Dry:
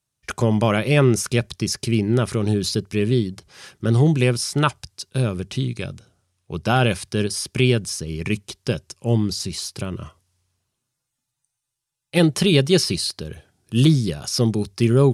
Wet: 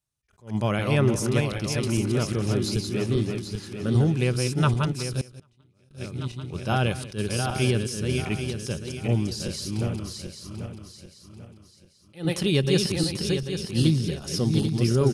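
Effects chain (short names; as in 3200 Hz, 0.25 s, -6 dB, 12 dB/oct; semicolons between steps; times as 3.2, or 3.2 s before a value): regenerating reverse delay 0.395 s, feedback 59%, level -4 dB; 5.21–5.91 gate -14 dBFS, range -33 dB; low shelf 68 Hz +9 dB; on a send: echo 0.186 s -17 dB; on the sum: attack slew limiter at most 220 dB/s; gain -7 dB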